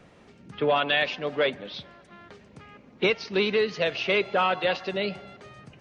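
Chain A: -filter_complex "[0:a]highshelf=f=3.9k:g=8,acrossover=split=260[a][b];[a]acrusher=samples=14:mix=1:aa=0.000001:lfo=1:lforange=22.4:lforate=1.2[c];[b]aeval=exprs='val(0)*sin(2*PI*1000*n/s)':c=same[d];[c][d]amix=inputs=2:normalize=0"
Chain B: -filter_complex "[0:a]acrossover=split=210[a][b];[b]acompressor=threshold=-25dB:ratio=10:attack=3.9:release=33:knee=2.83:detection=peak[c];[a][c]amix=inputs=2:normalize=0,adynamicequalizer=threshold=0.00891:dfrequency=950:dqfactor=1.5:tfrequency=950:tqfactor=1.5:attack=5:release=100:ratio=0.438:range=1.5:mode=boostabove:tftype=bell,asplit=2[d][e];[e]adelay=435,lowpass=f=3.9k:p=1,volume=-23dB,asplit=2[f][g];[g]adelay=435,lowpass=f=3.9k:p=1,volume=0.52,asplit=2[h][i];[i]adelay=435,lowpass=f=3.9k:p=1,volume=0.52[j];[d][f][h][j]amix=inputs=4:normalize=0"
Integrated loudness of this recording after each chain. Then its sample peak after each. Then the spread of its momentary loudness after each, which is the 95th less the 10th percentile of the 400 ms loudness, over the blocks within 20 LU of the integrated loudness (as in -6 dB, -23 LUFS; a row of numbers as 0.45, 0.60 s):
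-27.5, -29.0 LUFS; -9.0, -14.0 dBFS; 14, 21 LU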